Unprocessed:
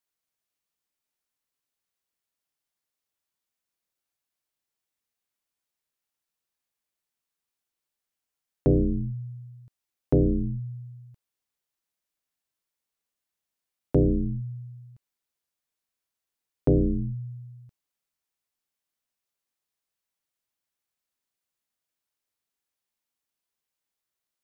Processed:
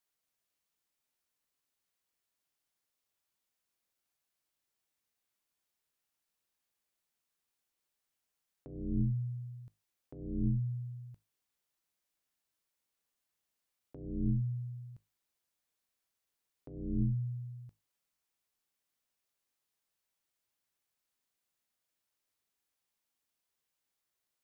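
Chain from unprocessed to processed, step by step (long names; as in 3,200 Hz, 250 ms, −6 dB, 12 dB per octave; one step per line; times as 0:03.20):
compressor whose output falls as the input rises −28 dBFS, ratio −0.5
tuned comb filter 52 Hz, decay 0.26 s, harmonics all, mix 40%
level −2 dB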